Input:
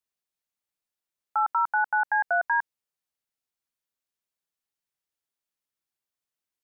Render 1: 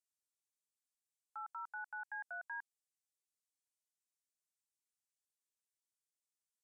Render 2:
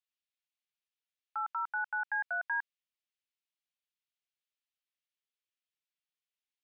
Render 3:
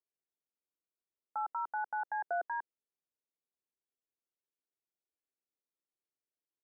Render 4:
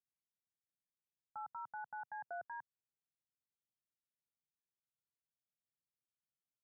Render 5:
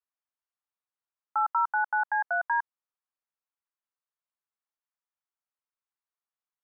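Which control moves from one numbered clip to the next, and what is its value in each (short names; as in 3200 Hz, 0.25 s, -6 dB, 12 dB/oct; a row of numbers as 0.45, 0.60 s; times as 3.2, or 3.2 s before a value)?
band-pass, frequency: 8000, 2900, 370, 130, 1100 Hz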